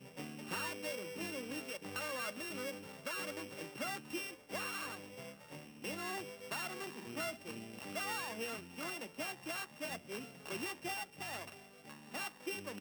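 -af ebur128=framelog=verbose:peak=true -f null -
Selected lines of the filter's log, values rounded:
Integrated loudness:
  I:         -42.3 LUFS
  Threshold: -52.4 LUFS
Loudness range:
  LRA:         1.7 LU
  Threshold: -62.3 LUFS
  LRA low:   -43.3 LUFS
  LRA high:  -41.6 LUFS
True peak:
  Peak:      -26.7 dBFS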